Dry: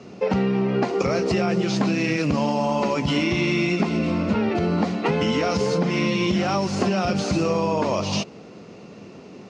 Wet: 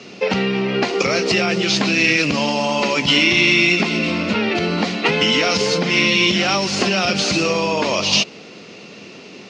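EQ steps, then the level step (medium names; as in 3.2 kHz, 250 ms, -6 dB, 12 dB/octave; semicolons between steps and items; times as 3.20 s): frequency weighting D; +3.0 dB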